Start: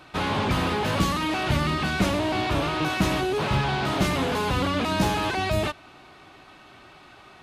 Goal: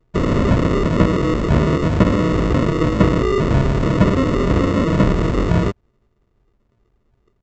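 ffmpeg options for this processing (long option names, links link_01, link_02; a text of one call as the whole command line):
ffmpeg -i in.wav -filter_complex "[0:a]anlmdn=3.98,aresample=16000,acrusher=samples=20:mix=1:aa=0.000001,aresample=44100,highshelf=frequency=3500:gain=-11.5,acrossover=split=3200[link_01][link_02];[link_02]acompressor=threshold=-44dB:ratio=4:attack=1:release=60[link_03];[link_01][link_03]amix=inputs=2:normalize=0,volume=9dB" out.wav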